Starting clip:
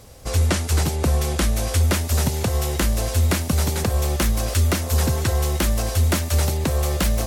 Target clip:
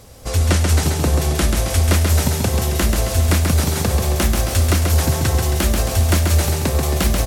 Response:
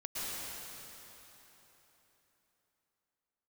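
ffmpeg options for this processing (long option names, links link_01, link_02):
-filter_complex "[0:a]aecho=1:1:135|270|405|540|675|810|945:0.596|0.322|0.174|0.0938|0.0506|0.0274|0.0148,asplit=2[link_01][link_02];[1:a]atrim=start_sample=2205,atrim=end_sample=3969,adelay=32[link_03];[link_02][link_03]afir=irnorm=-1:irlink=0,volume=-10dB[link_04];[link_01][link_04]amix=inputs=2:normalize=0,volume=2dB"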